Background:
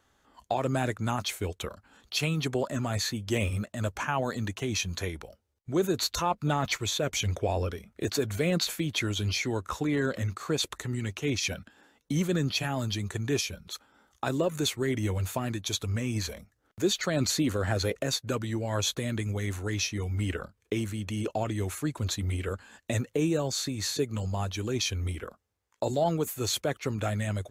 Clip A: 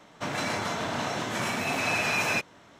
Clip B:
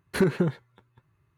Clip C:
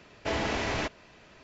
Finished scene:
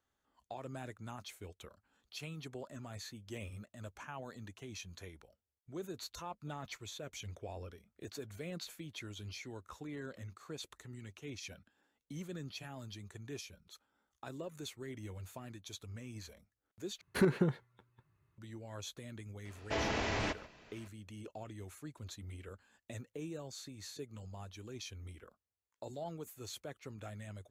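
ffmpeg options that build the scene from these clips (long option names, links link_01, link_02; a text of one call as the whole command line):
ffmpeg -i bed.wav -i cue0.wav -i cue1.wav -i cue2.wav -filter_complex "[0:a]volume=-17dB[link_01];[3:a]asplit=2[link_02][link_03];[link_03]adelay=139.9,volume=-18dB,highshelf=frequency=4000:gain=-3.15[link_04];[link_02][link_04]amix=inputs=2:normalize=0[link_05];[link_01]asplit=2[link_06][link_07];[link_06]atrim=end=17.014[link_08];[2:a]atrim=end=1.37,asetpts=PTS-STARTPTS,volume=-6.5dB[link_09];[link_07]atrim=start=18.376[link_10];[link_05]atrim=end=1.43,asetpts=PTS-STARTPTS,volume=-5dB,afade=type=in:duration=0.004:curve=hsin,afade=type=out:start_time=1.426:duration=0.004:curve=hsin,adelay=19450[link_11];[link_08][link_09]acrossfade=duration=0.004:curve1=hsin:curve2=hsin[link_12];[link_12][link_10]acrossfade=duration=0.004:curve1=hsin:curve2=hsin[link_13];[link_13][link_11]amix=inputs=2:normalize=0" out.wav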